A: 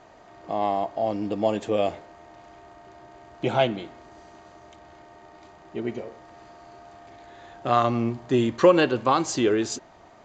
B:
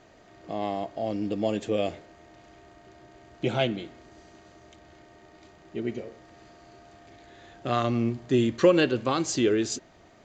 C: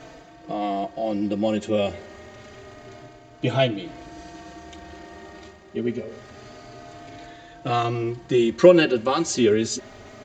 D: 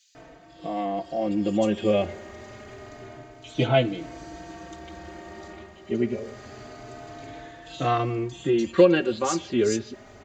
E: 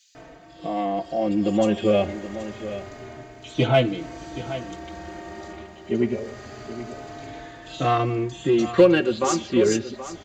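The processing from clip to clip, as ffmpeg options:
ffmpeg -i in.wav -af "equalizer=frequency=920:width=1.3:gain=-10" out.wav
ffmpeg -i in.wav -filter_complex "[0:a]areverse,acompressor=mode=upward:threshold=-37dB:ratio=2.5,areverse,asplit=2[link_01][link_02];[link_02]adelay=4.1,afreqshift=0.27[link_03];[link_01][link_03]amix=inputs=2:normalize=1,volume=7dB" out.wav
ffmpeg -i in.wav -filter_complex "[0:a]acrossover=split=3600[link_01][link_02];[link_01]adelay=150[link_03];[link_03][link_02]amix=inputs=2:normalize=0,dynaudnorm=framelen=460:gausssize=5:maxgain=4.5dB,volume=-3.5dB" out.wav
ffmpeg -i in.wav -filter_complex "[0:a]asplit=2[link_01][link_02];[link_02]asoftclip=type=hard:threshold=-18dB,volume=-8dB[link_03];[link_01][link_03]amix=inputs=2:normalize=0,aecho=1:1:775:0.224" out.wav

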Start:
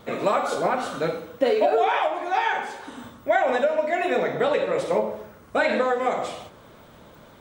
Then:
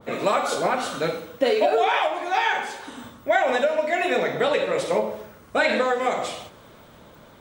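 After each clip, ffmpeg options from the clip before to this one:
ffmpeg -i in.wav -af "adynamicequalizer=threshold=0.0158:dfrequency=1900:dqfactor=0.7:tfrequency=1900:tqfactor=0.7:attack=5:release=100:ratio=0.375:range=3:mode=boostabove:tftype=highshelf" out.wav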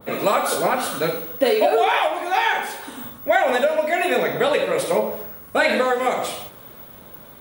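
ffmpeg -i in.wav -af "aexciter=amount=6.1:drive=4.5:freq=9700,volume=2.5dB" out.wav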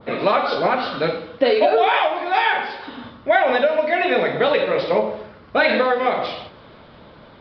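ffmpeg -i in.wav -af "aresample=11025,aresample=44100,volume=1.5dB" out.wav

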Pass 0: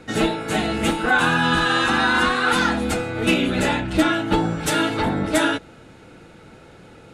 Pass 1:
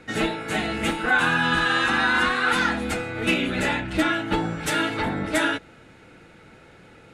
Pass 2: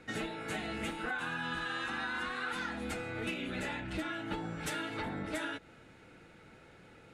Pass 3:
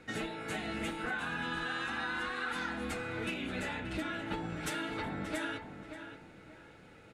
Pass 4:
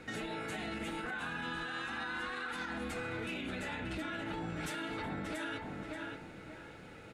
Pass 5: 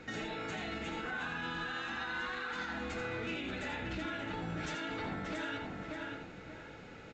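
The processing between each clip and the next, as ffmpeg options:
ffmpeg -i in.wav -af "equalizer=frequency=2000:width_type=o:width=1:gain=6,volume=-5dB" out.wav
ffmpeg -i in.wav -af "acompressor=threshold=-27dB:ratio=6,volume=-7.5dB" out.wav
ffmpeg -i in.wav -filter_complex "[0:a]asplit=2[link_01][link_02];[link_02]adelay=580,lowpass=frequency=3000:poles=1,volume=-9dB,asplit=2[link_03][link_04];[link_04]adelay=580,lowpass=frequency=3000:poles=1,volume=0.3,asplit=2[link_05][link_06];[link_06]adelay=580,lowpass=frequency=3000:poles=1,volume=0.3[link_07];[link_01][link_03][link_05][link_07]amix=inputs=4:normalize=0" out.wav
ffmpeg -i in.wav -af "alimiter=level_in=11.5dB:limit=-24dB:level=0:latency=1:release=107,volume=-11.5dB,volume=4.5dB" out.wav
ffmpeg -i in.wav -af "aecho=1:1:83:0.447" -ar 16000 -c:a pcm_mulaw out.wav

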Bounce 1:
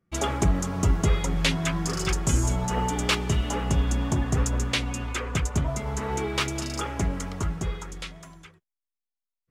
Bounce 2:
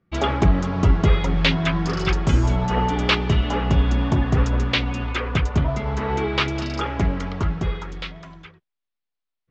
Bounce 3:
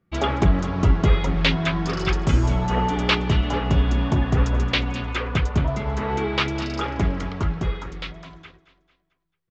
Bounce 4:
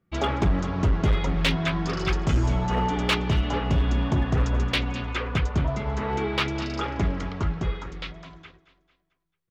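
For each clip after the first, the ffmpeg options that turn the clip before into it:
ffmpeg -i in.wav -af "lowpass=frequency=4400:width=0.5412,lowpass=frequency=4400:width=1.3066,volume=5.5dB" out.wav
ffmpeg -i in.wav -af "aecho=1:1:222|444|666|888:0.158|0.0729|0.0335|0.0154,volume=-1dB" out.wav
ffmpeg -i in.wav -af "volume=13.5dB,asoftclip=hard,volume=-13.5dB,volume=-2.5dB" out.wav

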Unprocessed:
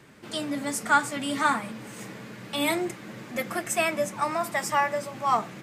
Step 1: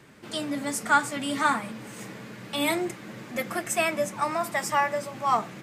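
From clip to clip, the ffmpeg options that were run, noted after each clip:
ffmpeg -i in.wav -af anull out.wav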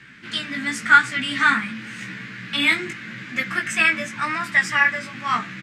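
ffmpeg -i in.wav -af "firequalizer=gain_entry='entry(120,0);entry(210,3);entry(420,-9);entry(680,-13);entry(1600,12);entry(4600,3);entry(12000,-13)':delay=0.05:min_phase=1,flanger=delay=15.5:depth=3.4:speed=0.89,volume=5dB" out.wav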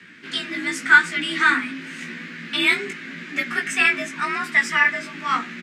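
ffmpeg -i in.wav -af "afreqshift=45" out.wav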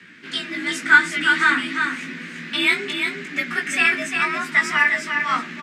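ffmpeg -i in.wav -af "aecho=1:1:350:0.531" out.wav

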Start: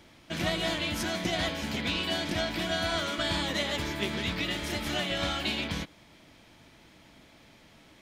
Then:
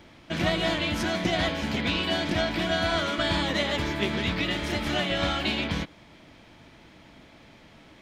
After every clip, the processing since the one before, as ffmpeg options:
ffmpeg -i in.wav -af "equalizer=frequency=14000:width_type=o:width=1.7:gain=-11,volume=5dB" out.wav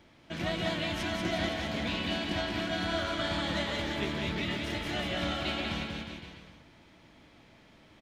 ffmpeg -i in.wav -af "aecho=1:1:190|361|514.9|653.4|778.1:0.631|0.398|0.251|0.158|0.1,volume=-8dB" out.wav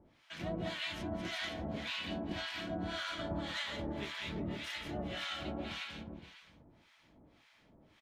ffmpeg -i in.wav -filter_complex "[0:a]acrossover=split=940[link_01][link_02];[link_01]aeval=exprs='val(0)*(1-1/2+1/2*cos(2*PI*1.8*n/s))':channel_layout=same[link_03];[link_02]aeval=exprs='val(0)*(1-1/2-1/2*cos(2*PI*1.8*n/s))':channel_layout=same[link_04];[link_03][link_04]amix=inputs=2:normalize=0,volume=-2.5dB" out.wav

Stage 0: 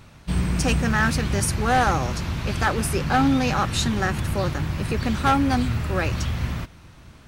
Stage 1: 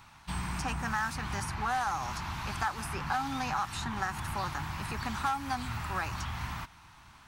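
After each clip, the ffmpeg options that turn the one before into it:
ffmpeg -i in.wav -filter_complex "[0:a]lowshelf=frequency=680:width_type=q:width=3:gain=-8.5,acrossover=split=1900|4500[link_01][link_02][link_03];[link_01]acompressor=threshold=-26dB:ratio=4[link_04];[link_02]acompressor=threshold=-44dB:ratio=4[link_05];[link_03]acompressor=threshold=-42dB:ratio=4[link_06];[link_04][link_05][link_06]amix=inputs=3:normalize=0,volume=-4dB" out.wav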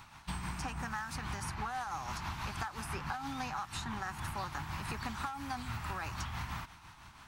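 ffmpeg -i in.wav -af "tremolo=f=6.1:d=0.45,acompressor=threshold=-38dB:ratio=6,volume=2.5dB" out.wav

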